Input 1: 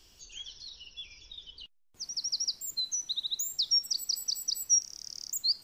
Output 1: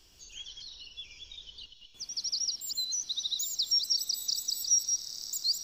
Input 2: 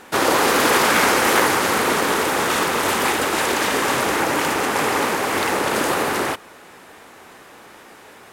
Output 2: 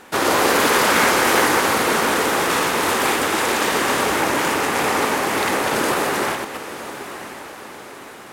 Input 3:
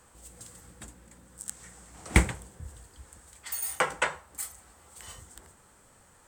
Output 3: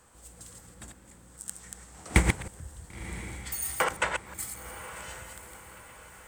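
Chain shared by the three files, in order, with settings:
delay that plays each chunk backwards 124 ms, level −4.5 dB
feedback delay with all-pass diffusion 1,006 ms, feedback 48%, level −13 dB
level −1 dB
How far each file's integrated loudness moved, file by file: +0.5, +0.5, −1.5 LU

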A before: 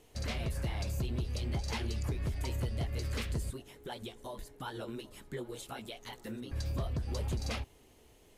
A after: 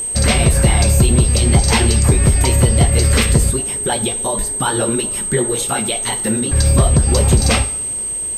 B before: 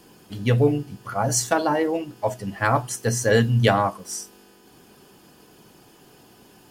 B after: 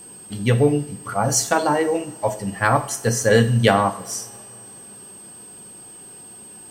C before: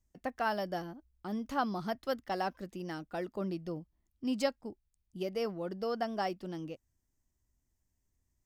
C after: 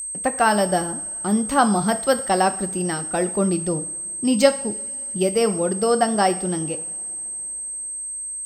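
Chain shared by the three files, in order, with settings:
coupled-rooms reverb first 0.53 s, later 3.8 s, from −22 dB, DRR 9 dB
steady tone 8,300 Hz −42 dBFS
normalise the peak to −2 dBFS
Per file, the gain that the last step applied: +22.0, +2.5, +14.5 decibels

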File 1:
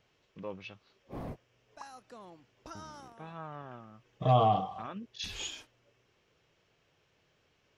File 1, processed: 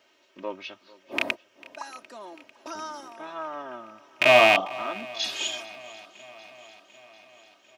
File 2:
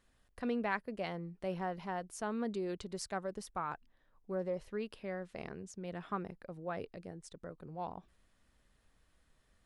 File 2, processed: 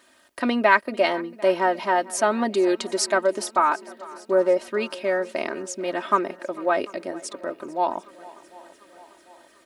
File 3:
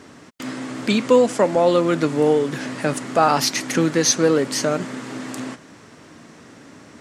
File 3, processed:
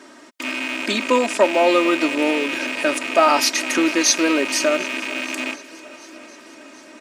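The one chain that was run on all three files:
loose part that buzzes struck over −36 dBFS, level −15 dBFS
high-pass filter 330 Hz 12 dB per octave
comb filter 3.2 ms, depth 75%
feedback echo with a long and a short gap by turns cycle 745 ms, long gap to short 1.5 to 1, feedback 54%, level −21 dB
normalise the peak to −3 dBFS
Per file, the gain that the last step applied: +8.0, +17.0, 0.0 decibels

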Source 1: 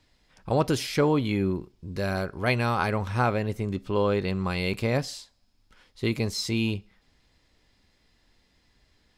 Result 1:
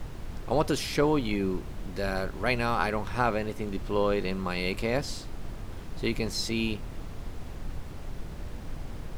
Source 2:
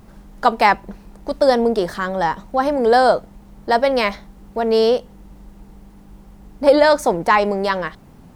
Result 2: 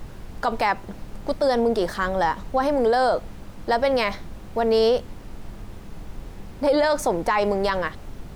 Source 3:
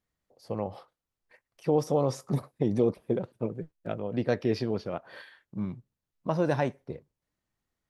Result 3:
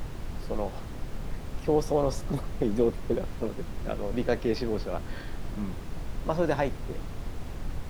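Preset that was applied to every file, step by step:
parametric band 72 Hz −14.5 dB 1.4 octaves
background noise brown −34 dBFS
boost into a limiter +10 dB
normalise the peak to −12 dBFS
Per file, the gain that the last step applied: −11.0, −11.0, −9.0 decibels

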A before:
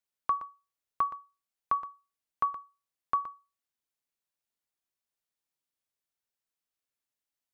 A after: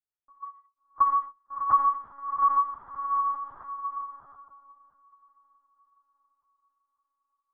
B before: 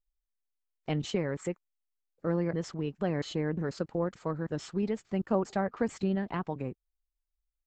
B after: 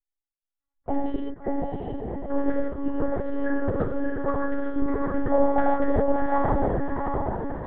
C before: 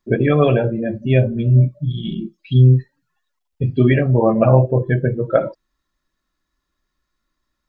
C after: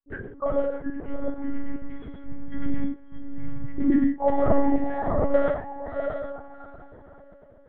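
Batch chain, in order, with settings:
loose part that buzzes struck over −24 dBFS, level −16 dBFS
high-shelf EQ 2,400 Hz −10.5 dB
auto-filter low-pass saw down 8.4 Hz 670–2,000 Hz
gate pattern "xx..xxxxx" 143 BPM −24 dB
Butterworth band-reject 2,500 Hz, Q 3.3
tuned comb filter 260 Hz, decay 0.21 s, harmonics odd, mix 60%
on a send: feedback delay with all-pass diffusion 682 ms, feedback 45%, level −3 dB
on the sum: reverb whose tail is shaped and stops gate 190 ms flat, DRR −2.5 dB
noise reduction from a noise print of the clip's start 12 dB
one-pitch LPC vocoder at 8 kHz 280 Hz
loudness normalisation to −27 LKFS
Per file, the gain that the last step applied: +8.0, +11.0, −3.5 decibels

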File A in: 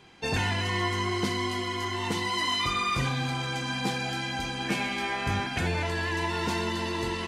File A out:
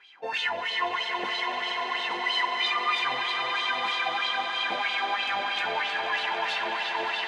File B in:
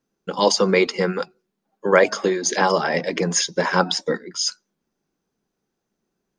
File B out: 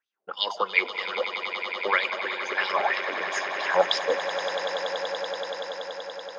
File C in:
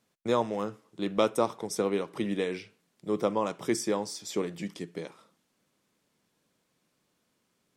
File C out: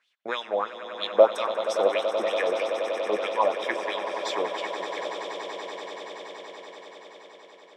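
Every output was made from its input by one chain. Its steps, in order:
high-pass filter 260 Hz 6 dB per octave
LFO wah 3.1 Hz 590–3,600 Hz, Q 4.6
echo that builds up and dies away 95 ms, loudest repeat 8, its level −13 dB
loudness normalisation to −27 LKFS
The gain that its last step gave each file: +10.0, +6.0, +15.5 decibels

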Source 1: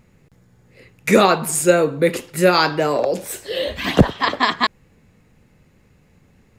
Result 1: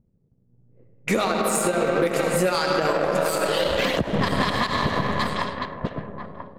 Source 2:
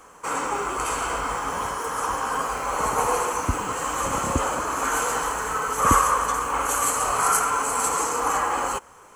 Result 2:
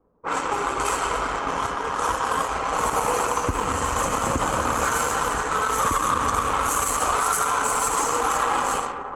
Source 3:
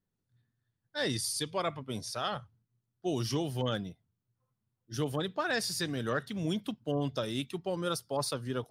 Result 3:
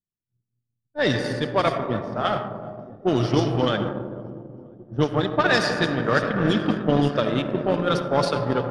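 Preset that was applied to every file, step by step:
feedback delay that plays each chunk backwards 493 ms, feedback 69%, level −13 dB
reverb reduction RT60 0.94 s
comb and all-pass reverb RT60 3.3 s, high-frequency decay 0.5×, pre-delay 30 ms, DRR 2 dB
downward compressor 10 to 1, threshold −19 dBFS
power curve on the samples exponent 1.4
low-pass that shuts in the quiet parts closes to 370 Hz, open at −26.5 dBFS
brickwall limiter −18 dBFS
loudness normalisation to −23 LKFS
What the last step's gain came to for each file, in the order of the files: +7.5, +7.5, +15.0 decibels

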